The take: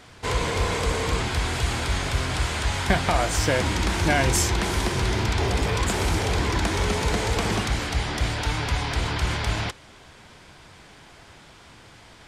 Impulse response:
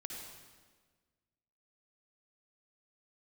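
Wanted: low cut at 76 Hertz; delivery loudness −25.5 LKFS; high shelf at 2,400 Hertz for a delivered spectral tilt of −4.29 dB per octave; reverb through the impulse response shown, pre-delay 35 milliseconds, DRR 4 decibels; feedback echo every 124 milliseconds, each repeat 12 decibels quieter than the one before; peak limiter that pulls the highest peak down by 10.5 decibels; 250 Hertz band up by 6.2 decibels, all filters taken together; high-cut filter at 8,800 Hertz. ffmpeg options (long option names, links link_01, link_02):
-filter_complex "[0:a]highpass=76,lowpass=8800,equalizer=frequency=250:width_type=o:gain=8.5,highshelf=frequency=2400:gain=3,alimiter=limit=-13.5dB:level=0:latency=1,aecho=1:1:124|248|372:0.251|0.0628|0.0157,asplit=2[link_01][link_02];[1:a]atrim=start_sample=2205,adelay=35[link_03];[link_02][link_03]afir=irnorm=-1:irlink=0,volume=-2dB[link_04];[link_01][link_04]amix=inputs=2:normalize=0,volume=-3.5dB"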